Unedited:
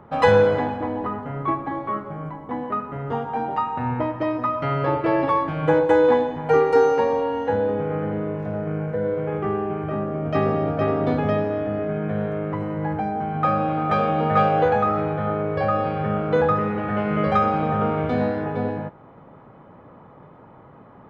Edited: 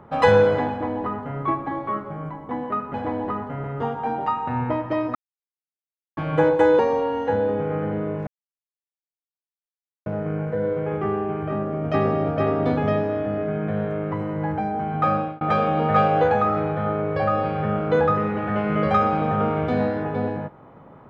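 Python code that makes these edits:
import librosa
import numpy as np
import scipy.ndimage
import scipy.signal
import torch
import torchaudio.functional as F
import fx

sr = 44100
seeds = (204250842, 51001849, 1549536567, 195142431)

y = fx.edit(x, sr, fx.duplicate(start_s=0.7, length_s=0.7, to_s=2.94),
    fx.silence(start_s=4.45, length_s=1.02),
    fx.cut(start_s=6.09, length_s=0.9),
    fx.insert_silence(at_s=8.47, length_s=1.79),
    fx.fade_out_span(start_s=13.56, length_s=0.26), tone=tone)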